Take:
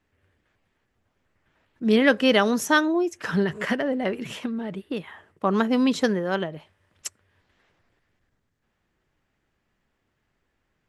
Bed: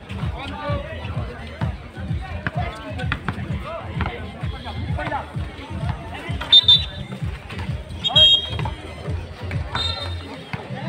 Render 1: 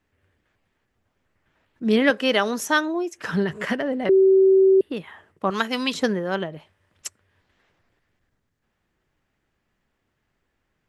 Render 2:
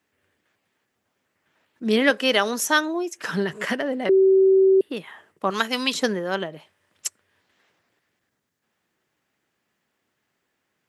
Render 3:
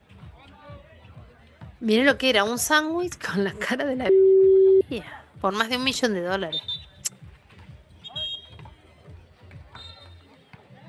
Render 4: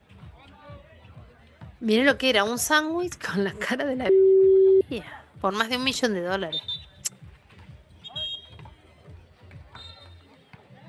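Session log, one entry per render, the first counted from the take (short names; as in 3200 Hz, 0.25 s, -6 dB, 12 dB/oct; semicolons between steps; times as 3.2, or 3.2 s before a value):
2.1–3.18 HPF 340 Hz 6 dB/oct; 4.09–4.81 bleep 383 Hz -11.5 dBFS; 5.5–5.94 tilt shelf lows -9 dB, about 900 Hz
Bessel high-pass 200 Hz, order 2; high shelf 4100 Hz +7 dB
add bed -19 dB
gain -1 dB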